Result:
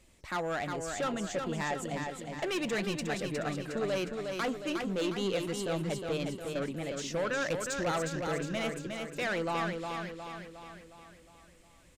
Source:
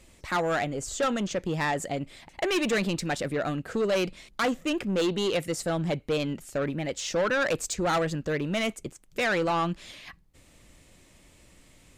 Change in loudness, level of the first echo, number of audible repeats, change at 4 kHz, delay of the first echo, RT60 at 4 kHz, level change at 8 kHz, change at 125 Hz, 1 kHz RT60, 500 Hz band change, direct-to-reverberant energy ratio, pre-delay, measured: −5.5 dB, −5.0 dB, 6, −5.5 dB, 360 ms, no reverb audible, −5.5 dB, −5.0 dB, no reverb audible, −5.0 dB, no reverb audible, no reverb audible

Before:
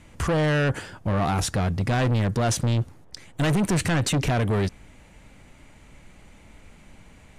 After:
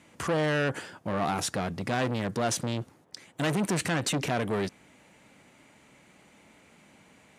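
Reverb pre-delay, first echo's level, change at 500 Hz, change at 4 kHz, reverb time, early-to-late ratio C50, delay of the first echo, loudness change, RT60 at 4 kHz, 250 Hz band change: no reverb audible, no echo audible, −3.0 dB, −3.0 dB, no reverb audible, no reverb audible, no echo audible, −5.5 dB, no reverb audible, −5.0 dB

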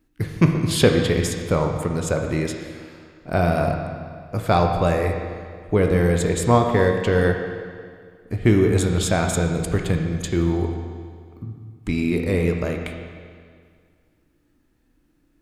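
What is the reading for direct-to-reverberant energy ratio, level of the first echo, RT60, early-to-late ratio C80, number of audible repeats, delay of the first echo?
2.5 dB, no echo audible, 2.0 s, 5.5 dB, no echo audible, no echo audible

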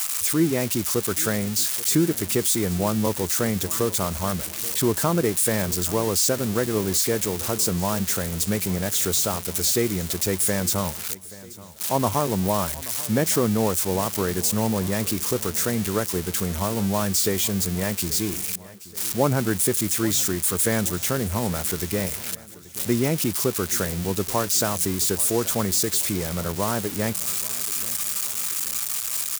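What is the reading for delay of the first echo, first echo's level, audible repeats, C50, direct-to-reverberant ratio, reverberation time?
830 ms, −19.0 dB, 3, no reverb audible, no reverb audible, no reverb audible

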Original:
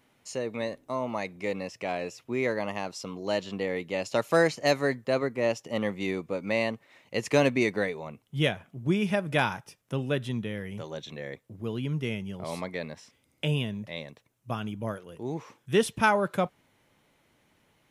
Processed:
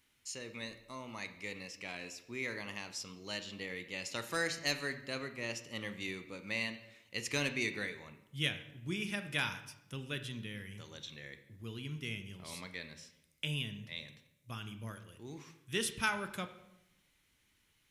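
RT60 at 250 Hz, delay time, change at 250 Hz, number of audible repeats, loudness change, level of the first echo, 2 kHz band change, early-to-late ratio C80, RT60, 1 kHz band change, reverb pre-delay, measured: 1.1 s, no echo audible, −13.0 dB, no echo audible, −9.5 dB, no echo audible, −5.5 dB, 13.5 dB, 0.85 s, −13.5 dB, 21 ms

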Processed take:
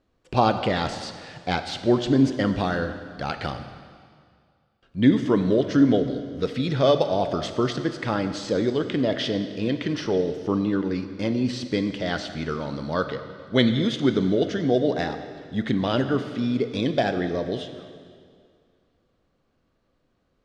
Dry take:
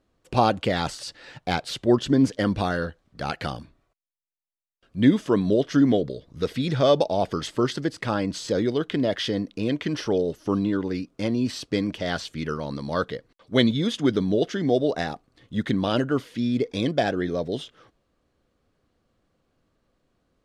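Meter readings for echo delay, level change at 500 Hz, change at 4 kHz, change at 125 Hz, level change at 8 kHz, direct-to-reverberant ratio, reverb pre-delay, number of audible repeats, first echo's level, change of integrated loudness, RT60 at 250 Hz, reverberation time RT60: no echo audible, +0.5 dB, 0.0 dB, +0.5 dB, −3.0 dB, 8.0 dB, 15 ms, no echo audible, no echo audible, +0.5 dB, 2.1 s, 2.1 s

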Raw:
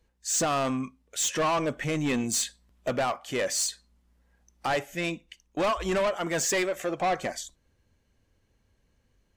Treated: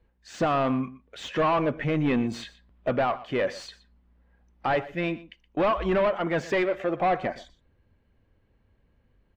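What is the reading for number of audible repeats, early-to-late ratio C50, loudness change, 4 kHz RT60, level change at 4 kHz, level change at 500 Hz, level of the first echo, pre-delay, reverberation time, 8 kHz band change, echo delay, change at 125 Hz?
1, no reverb audible, +1.5 dB, no reverb audible, −6.0 dB, +3.0 dB, −18.0 dB, no reverb audible, no reverb audible, below −20 dB, 121 ms, +4.0 dB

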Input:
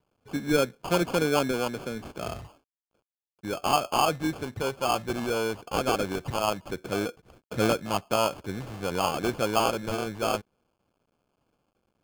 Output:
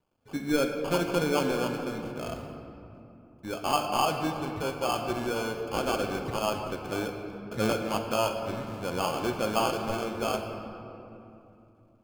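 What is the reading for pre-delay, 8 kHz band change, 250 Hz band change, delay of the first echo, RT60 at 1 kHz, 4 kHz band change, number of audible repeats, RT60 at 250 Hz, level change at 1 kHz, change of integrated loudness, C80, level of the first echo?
3 ms, −3.0 dB, −1.0 dB, no echo audible, 2.7 s, −2.5 dB, no echo audible, 4.1 s, −2.0 dB, −2.0 dB, 6.0 dB, no echo audible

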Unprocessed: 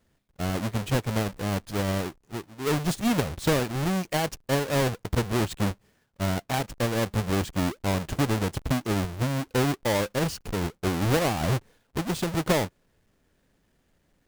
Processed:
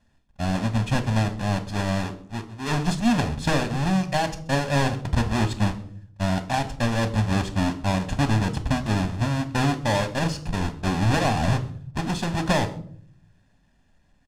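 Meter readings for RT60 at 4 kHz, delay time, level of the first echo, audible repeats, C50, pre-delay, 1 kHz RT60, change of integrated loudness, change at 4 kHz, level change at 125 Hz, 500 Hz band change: 0.40 s, 130 ms, −23.5 dB, 1, 15.0 dB, 3 ms, 0.50 s, +2.5 dB, +2.0 dB, +4.0 dB, −1.0 dB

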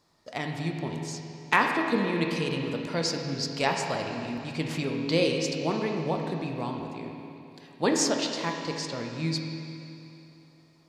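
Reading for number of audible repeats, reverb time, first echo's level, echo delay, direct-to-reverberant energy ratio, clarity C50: no echo audible, 2.9 s, no echo audible, no echo audible, 1.5 dB, 3.0 dB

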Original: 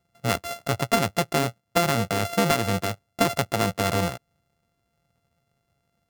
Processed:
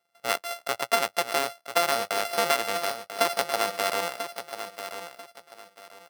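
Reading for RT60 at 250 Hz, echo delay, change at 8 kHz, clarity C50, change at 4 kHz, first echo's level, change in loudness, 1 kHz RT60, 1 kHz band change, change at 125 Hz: no reverb audible, 991 ms, −0.5 dB, no reverb audible, +0.5 dB, −10.0 dB, −2.5 dB, no reverb audible, −0.5 dB, −24.0 dB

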